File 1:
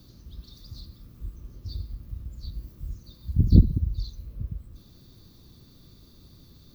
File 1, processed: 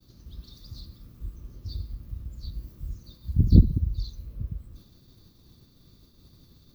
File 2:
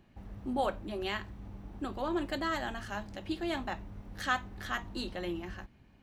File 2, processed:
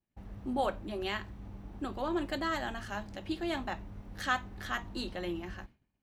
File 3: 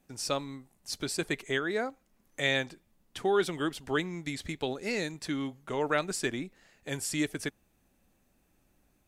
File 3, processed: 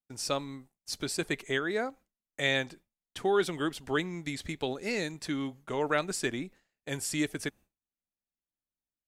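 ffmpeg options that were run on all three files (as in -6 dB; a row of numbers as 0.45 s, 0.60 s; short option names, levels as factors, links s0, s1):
-af "agate=range=0.0224:threshold=0.00447:ratio=3:detection=peak"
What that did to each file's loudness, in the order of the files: 0.0 LU, 0.0 LU, 0.0 LU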